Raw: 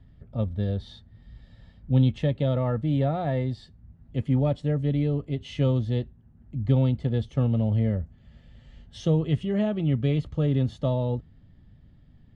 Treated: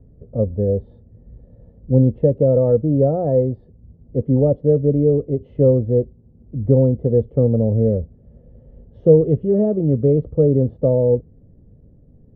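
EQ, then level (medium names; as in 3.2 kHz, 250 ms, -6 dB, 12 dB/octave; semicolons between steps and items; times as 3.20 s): resonant low-pass 480 Hz, resonance Q 4.6; +4.5 dB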